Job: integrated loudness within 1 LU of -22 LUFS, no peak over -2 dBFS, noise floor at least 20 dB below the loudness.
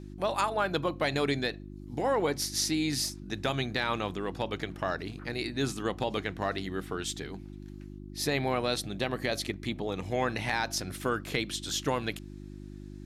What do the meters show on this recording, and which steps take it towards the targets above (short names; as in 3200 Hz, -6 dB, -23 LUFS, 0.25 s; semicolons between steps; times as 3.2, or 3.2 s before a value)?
hum 50 Hz; harmonics up to 350 Hz; hum level -41 dBFS; loudness -31.5 LUFS; peak -15.5 dBFS; loudness target -22.0 LUFS
-> de-hum 50 Hz, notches 7; gain +9.5 dB